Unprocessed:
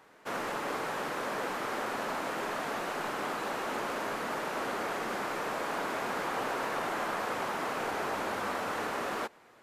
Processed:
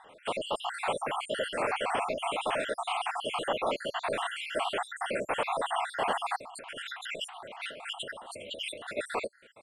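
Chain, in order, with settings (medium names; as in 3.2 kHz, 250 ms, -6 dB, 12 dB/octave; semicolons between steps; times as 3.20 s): random holes in the spectrogram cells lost 65%; FFT filter 100 Hz 0 dB, 180 Hz -4 dB, 360 Hz -4 dB, 580 Hz +5 dB, 1 kHz 0 dB, 1.8 kHz -3 dB, 3 kHz +8 dB, 6.2 kHz -17 dB, 8.8 kHz +8 dB, 14 kHz -30 dB; 6.40–8.97 s: compressor with a negative ratio -48 dBFS, ratio -1; trim +6 dB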